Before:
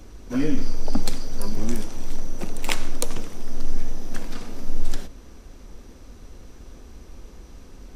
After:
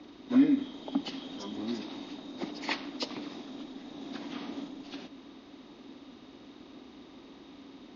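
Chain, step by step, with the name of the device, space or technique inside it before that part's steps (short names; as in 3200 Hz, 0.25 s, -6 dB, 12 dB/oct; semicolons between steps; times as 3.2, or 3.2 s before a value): hearing aid with frequency lowering (nonlinear frequency compression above 1500 Hz 1.5:1; compressor 2:1, threshold -21 dBFS, peak gain reduction 7 dB; speaker cabinet 260–5600 Hz, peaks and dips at 280 Hz +10 dB, 480 Hz -7 dB, 1500 Hz -5 dB)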